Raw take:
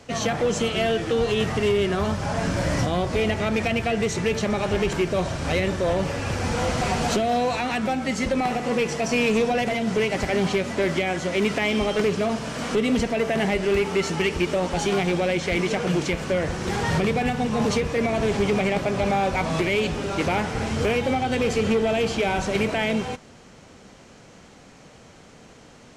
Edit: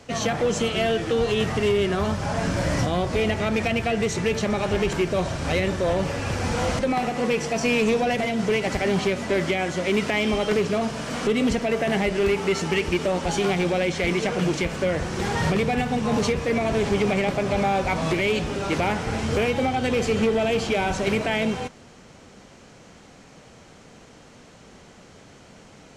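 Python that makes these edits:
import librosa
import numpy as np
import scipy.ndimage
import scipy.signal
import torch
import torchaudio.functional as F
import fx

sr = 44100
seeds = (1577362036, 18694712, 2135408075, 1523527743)

y = fx.edit(x, sr, fx.cut(start_s=6.79, length_s=1.48), tone=tone)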